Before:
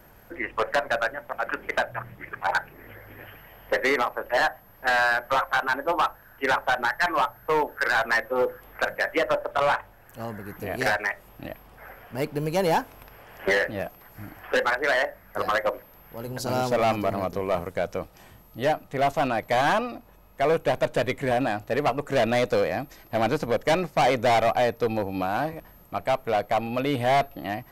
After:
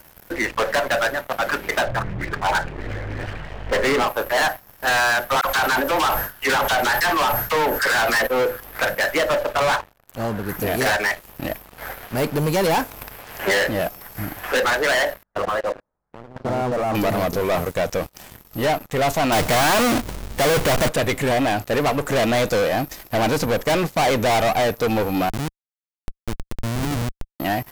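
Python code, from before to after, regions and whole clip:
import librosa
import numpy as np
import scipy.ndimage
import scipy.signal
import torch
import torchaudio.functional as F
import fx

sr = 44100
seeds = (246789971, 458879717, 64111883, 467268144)

y = fx.chain(x, sr, fx.steep_lowpass(hz=3600.0, slope=36),
    fx.tilt_eq(slope=-2.5),
    fx.hum_notches(base_hz=60, count=9), at=(1.84, 4.08))
y = fx.chain(y, sr, fx.dispersion(late='lows', ms=40.0, hz=1600.0),
    fx.sustainer(db_per_s=120.0), at=(5.41, 8.27))
y = fx.chain(y, sr, fx.lowpass(hz=3800.0, slope=6),
    fx.peak_eq(hz=2000.0, db=-13.0, octaves=0.47), at=(9.77, 10.49))
y = fx.chain(y, sr, fx.lowpass(hz=1500.0, slope=24),
    fx.level_steps(step_db=16), at=(15.23, 16.95))
y = fx.chain(y, sr, fx.halfwave_hold(),
    fx.leveller(passes=2), at=(19.32, 20.89))
y = fx.chain(y, sr, fx.cheby2_lowpass(hz=1100.0, order=4, stop_db=60),
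    fx.schmitt(flips_db=-32.0), at=(25.29, 27.4))
y = fx.high_shelf(y, sr, hz=4500.0, db=6.5)
y = fx.leveller(y, sr, passes=5)
y = y * librosa.db_to_amplitude(-6.5)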